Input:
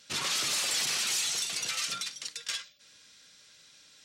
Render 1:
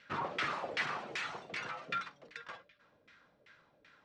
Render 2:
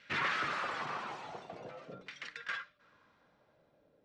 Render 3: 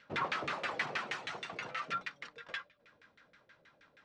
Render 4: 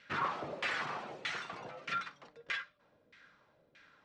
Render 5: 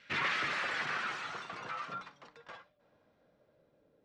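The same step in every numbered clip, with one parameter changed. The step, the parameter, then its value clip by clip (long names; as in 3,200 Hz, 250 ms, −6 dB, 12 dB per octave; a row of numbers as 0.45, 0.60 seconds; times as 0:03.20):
auto-filter low-pass, speed: 2.6, 0.48, 6.3, 1.6, 0.24 Hertz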